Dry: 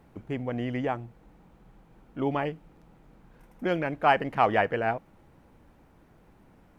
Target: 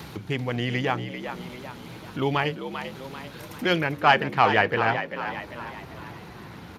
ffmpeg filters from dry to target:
-filter_complex "[0:a]equalizer=f=250:t=o:w=0.67:g=-6,equalizer=f=630:t=o:w=0.67:g=-7,equalizer=f=4k:t=o:w=0.67:g=8,acontrast=57,bandreject=f=94.05:t=h:w=4,bandreject=f=188.1:t=h:w=4,bandreject=f=282.15:t=h:w=4,bandreject=f=376.2:t=h:w=4,bandreject=f=470.25:t=h:w=4,bandreject=f=564.3:t=h:w=4,acompressor=mode=upward:threshold=-28dB:ratio=2.5,asetnsamples=n=441:p=0,asendcmd='3.78 highshelf g 2',highshelf=f=3.2k:g=11,asplit=6[a][b][c][d][e][f];[b]adelay=393,afreqshift=62,volume=-9dB[g];[c]adelay=786,afreqshift=124,volume=-15.6dB[h];[d]adelay=1179,afreqshift=186,volume=-22.1dB[i];[e]adelay=1572,afreqshift=248,volume=-28.7dB[j];[f]adelay=1965,afreqshift=310,volume=-35.2dB[k];[a][g][h][i][j][k]amix=inputs=6:normalize=0,agate=range=-24dB:threshold=-49dB:ratio=16:detection=peak" -ar 32000 -c:a libspeex -b:a 36k

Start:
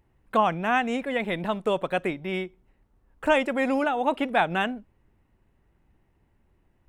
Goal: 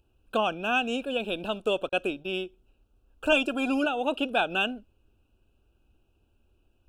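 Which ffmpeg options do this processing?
-filter_complex "[0:a]equalizer=f=160:t=o:w=0.67:g=-12,equalizer=f=1k:t=o:w=0.67:g=-10,equalizer=f=2.5k:t=o:w=0.67:g=9,asettb=1/sr,asplit=3[a][b][c];[a]atrim=end=1.894[d];[b]atrim=start=1.89:end=2.35,asetpts=PTS-STARTPTS,afade=t=in:d=0.004:c=qsin,afade=t=out:st=0.456:d=0.004:c=qsin,agate=range=-41dB:threshold=-38dB:ratio=16:detection=peak[e];[c]atrim=start=2.346[f];[d][e]acrossfade=d=0.004:c1=hsin:c2=qsin[g];[g][f]acrossfade=d=0.004:c1=qsin:c2=hsin,asettb=1/sr,asplit=3[h][i][j];[h]atrim=end=3.324[k];[i]atrim=start=3.32:end=3.86,asetpts=PTS-STARTPTS,afade=t=in:d=0.004:c=qsin,afade=t=out:st=0.536:d=0.004:c=qsin,aecho=1:1:2.9:0.65,atrim=end_sample=23814[l];[j]atrim=start=3.856[m];[k][l]acrossfade=d=0.004:c1=hsin:c2=qsin[n];[n][m]acrossfade=d=0.004:c1=qsin:c2=hsin,asuperstop=centerf=2000:order=8:qfactor=2.1"

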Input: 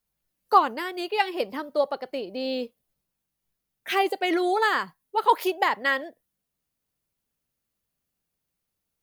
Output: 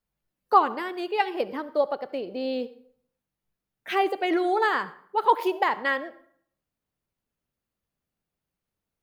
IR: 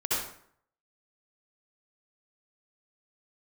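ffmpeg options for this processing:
-filter_complex "[0:a]highshelf=f=3.4k:g=-10.5,asplit=2[a][b];[1:a]atrim=start_sample=2205[c];[b][c]afir=irnorm=-1:irlink=0,volume=-24.5dB[d];[a][d]amix=inputs=2:normalize=0"

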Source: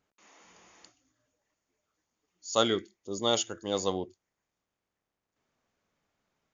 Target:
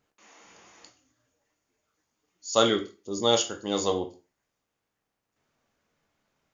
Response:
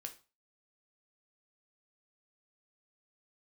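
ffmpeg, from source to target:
-filter_complex "[1:a]atrim=start_sample=2205[a];[0:a][a]afir=irnorm=-1:irlink=0,volume=8dB"

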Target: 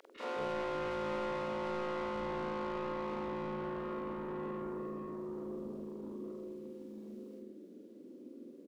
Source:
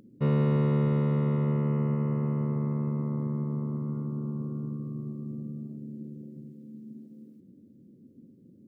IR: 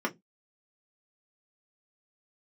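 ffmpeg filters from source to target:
-filter_complex "[0:a]afftfilt=real='re':imag='-im':win_size=4096:overlap=0.75,highpass=f=310:w=0.5412,highpass=f=310:w=1.3066,acompressor=threshold=-39dB:ratio=4,asplit=2[a][b];[b]highpass=f=720:p=1,volume=25dB,asoftclip=type=tanh:threshold=-33.5dB[c];[a][c]amix=inputs=2:normalize=0,lowpass=f=2k:p=1,volume=-6dB,acompressor=mode=upward:threshold=-59dB:ratio=2.5,acrossover=split=470|1800[d][e][f];[e]adelay=50[g];[d]adelay=210[h];[h][g][f]amix=inputs=3:normalize=0,volume=5dB"

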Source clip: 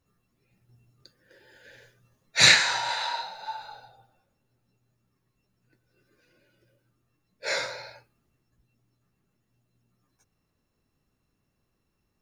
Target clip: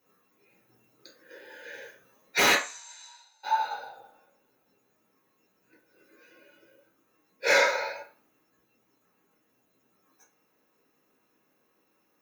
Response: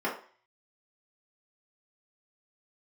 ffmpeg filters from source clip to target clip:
-filter_complex "[0:a]aemphasis=mode=production:type=bsi,acompressor=threshold=-18dB:ratio=3,aeval=exprs='0.112*(abs(mod(val(0)/0.112+3,4)-2)-1)':c=same,asplit=3[a][b][c];[a]afade=t=out:st=2.54:d=0.02[d];[b]bandpass=f=7.6k:t=q:w=9.1:csg=0,afade=t=in:st=2.54:d=0.02,afade=t=out:st=3.43:d=0.02[e];[c]afade=t=in:st=3.43:d=0.02[f];[d][e][f]amix=inputs=3:normalize=0[g];[1:a]atrim=start_sample=2205,asetrate=52920,aresample=44100[h];[g][h]afir=irnorm=-1:irlink=0"

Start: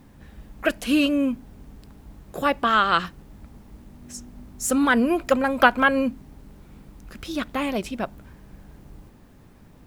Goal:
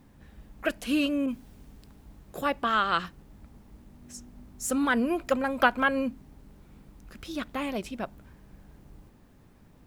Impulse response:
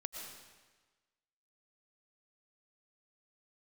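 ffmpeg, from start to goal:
-filter_complex "[0:a]asettb=1/sr,asplit=3[a][b][c];[a]atrim=end=1.264[d];[b]atrim=start=1.26:end=2.41,asetpts=PTS-STARTPTS,afade=t=in:d=0.004:c=qsin,afade=t=out:st=1.146:d=0.004:c=qsin,adynamicequalizer=threshold=0.00251:dfrequency=2100:dqfactor=0.7:tfrequency=2100:tqfactor=0.7:attack=5:release=100:ratio=0.375:range=3.5:mode=boostabove:tftype=highshelf[e];[c]atrim=start=2.406[f];[d][e]acrossfade=d=0.004:c1=hsin:c2=qsin[g];[g][f]acrossfade=d=0.004:c1=qsin:c2=hsin,volume=-6dB"

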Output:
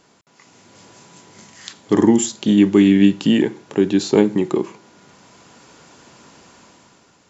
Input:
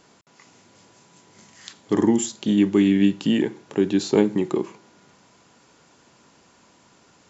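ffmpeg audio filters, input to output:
-af "dynaudnorm=f=150:g=9:m=9dB"

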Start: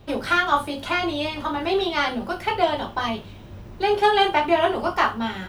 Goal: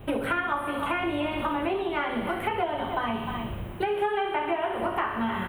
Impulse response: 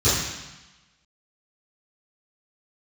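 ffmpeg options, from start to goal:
-filter_complex "[0:a]firequalizer=gain_entry='entry(3000,0);entry(4900,-26);entry(9000,3)':delay=0.05:min_phase=1,asplit=2[a][b];[b]aecho=0:1:61|122|183|244|305|366|427:0.376|0.222|0.131|0.0772|0.0455|0.0269|0.0159[c];[a][c]amix=inputs=2:normalize=0,acrossover=split=2700[d][e];[e]acompressor=threshold=-42dB:ratio=4:attack=1:release=60[f];[d][f]amix=inputs=2:normalize=0,asettb=1/sr,asplit=3[g][h][i];[g]atrim=end=3.644[j];[h]atrim=start=3.64:end=4.8,asetpts=PTS-STARTPTS,afade=t=in:d=0.004:c=qsin,afade=t=out:st=1.156:d=0.004:c=qsin,lowshelf=f=230:g=-7[k];[i]atrim=start=4.796[l];[j][k]acrossfade=d=0.004:c1=hsin:c2=qsin[m];[m][l]acrossfade=d=0.004:c1=qsin:c2=hsin,aecho=1:1:304:0.211,acompressor=threshold=-30dB:ratio=6,asplit=2[n][o];[1:a]atrim=start_sample=2205[p];[o][p]afir=irnorm=-1:irlink=0,volume=-36dB[q];[n][q]amix=inputs=2:normalize=0,volume=4.5dB"

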